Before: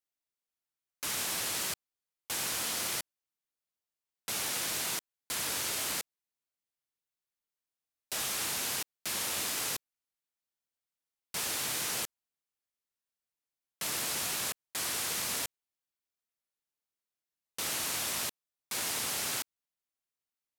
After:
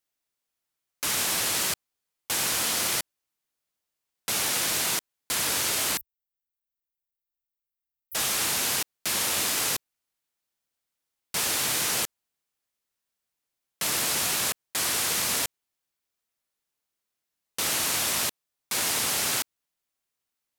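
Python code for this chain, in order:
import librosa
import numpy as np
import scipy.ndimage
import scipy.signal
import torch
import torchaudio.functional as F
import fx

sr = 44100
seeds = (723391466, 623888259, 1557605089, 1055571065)

y = fx.cheby2_bandstop(x, sr, low_hz=390.0, high_hz=4100.0, order=4, stop_db=80, at=(5.97, 8.15))
y = y * 10.0 ** (7.5 / 20.0)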